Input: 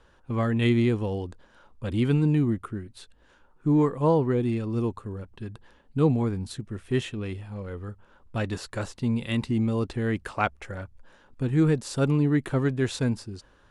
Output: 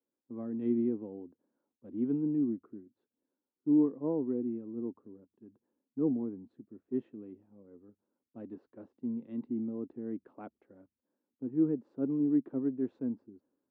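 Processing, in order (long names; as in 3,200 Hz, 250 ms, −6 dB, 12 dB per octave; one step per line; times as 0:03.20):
four-pole ladder band-pass 310 Hz, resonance 55%
multiband upward and downward expander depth 40%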